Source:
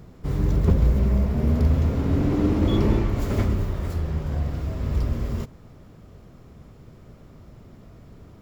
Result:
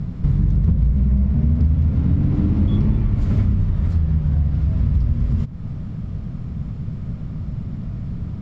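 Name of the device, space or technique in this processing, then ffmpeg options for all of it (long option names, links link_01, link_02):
jukebox: -af "lowpass=5000,lowshelf=frequency=260:width_type=q:width=1.5:gain=11.5,acompressor=threshold=-24dB:ratio=4,volume=7dB"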